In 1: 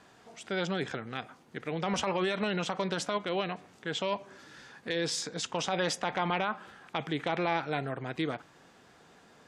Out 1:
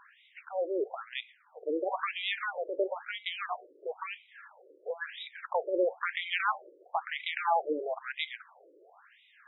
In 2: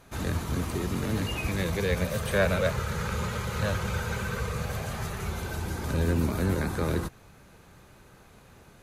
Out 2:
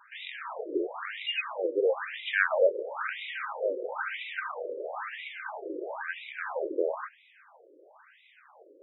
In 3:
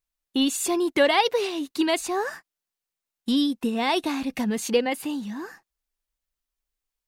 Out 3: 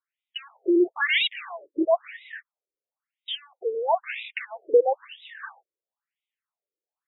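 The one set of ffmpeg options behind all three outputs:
-af "aeval=exprs='0.188*(abs(mod(val(0)/0.188+3,4)-2)-1)':c=same,afftfilt=real='re*between(b*sr/1024,410*pow(2800/410,0.5+0.5*sin(2*PI*1*pts/sr))/1.41,410*pow(2800/410,0.5+0.5*sin(2*PI*1*pts/sr))*1.41)':imag='im*between(b*sr/1024,410*pow(2800/410,0.5+0.5*sin(2*PI*1*pts/sr))/1.41,410*pow(2800/410,0.5+0.5*sin(2*PI*1*pts/sr))*1.41)':win_size=1024:overlap=0.75,volume=6dB"

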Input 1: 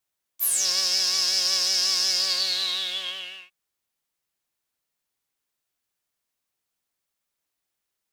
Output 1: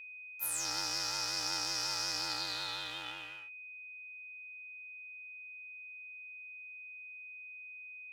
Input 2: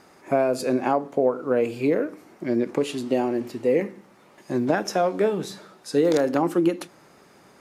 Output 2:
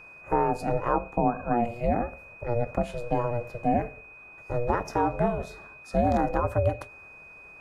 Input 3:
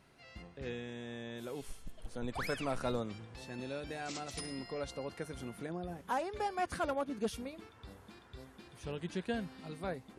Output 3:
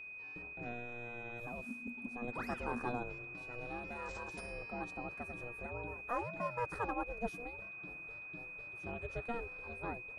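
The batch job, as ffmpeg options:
-af "aeval=exprs='val(0)*sin(2*PI*240*n/s)':c=same,highshelf=f=1.9k:t=q:w=1.5:g=-8.5,aeval=exprs='val(0)+0.00562*sin(2*PI*2500*n/s)':c=same,volume=-1dB"

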